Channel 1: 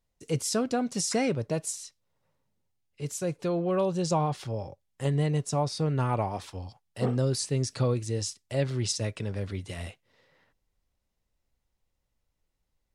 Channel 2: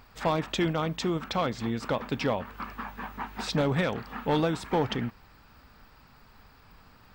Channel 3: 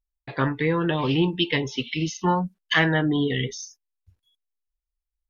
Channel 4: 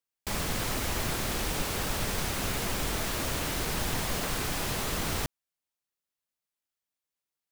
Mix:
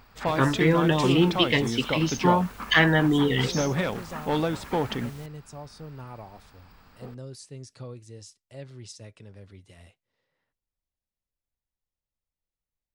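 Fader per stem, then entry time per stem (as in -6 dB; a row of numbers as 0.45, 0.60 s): -14.0, 0.0, +1.0, -18.0 dB; 0.00, 0.00, 0.00, 0.00 s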